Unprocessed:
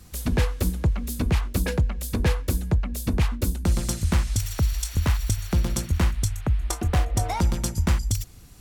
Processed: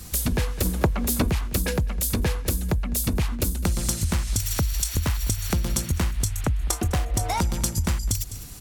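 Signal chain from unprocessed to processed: delay 205 ms -21 dB; in parallel at -12 dB: saturation -24 dBFS, distortion -9 dB; on the sum: treble shelf 4.6 kHz +7.5 dB; compression, threshold -26 dBFS, peak gain reduction 10 dB; 0.65–1.29 s: peaking EQ 760 Hz +8.5 dB 3 oct; trim +5 dB

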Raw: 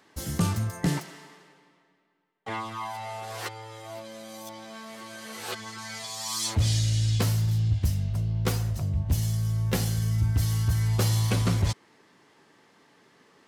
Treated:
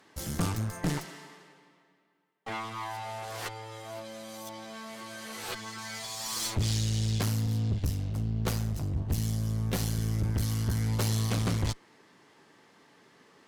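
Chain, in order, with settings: one-sided clip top -39 dBFS

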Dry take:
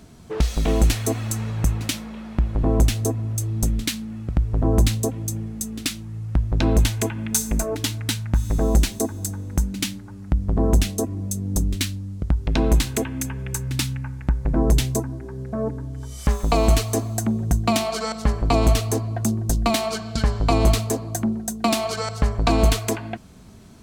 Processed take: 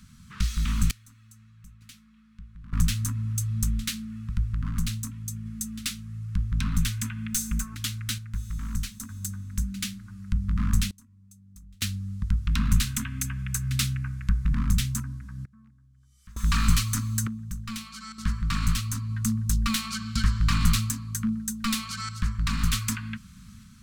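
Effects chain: one-sided wavefolder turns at -17 dBFS; elliptic band-stop 220–1200 Hz, stop band 40 dB; random-step tremolo 1.1 Hz, depth 95%

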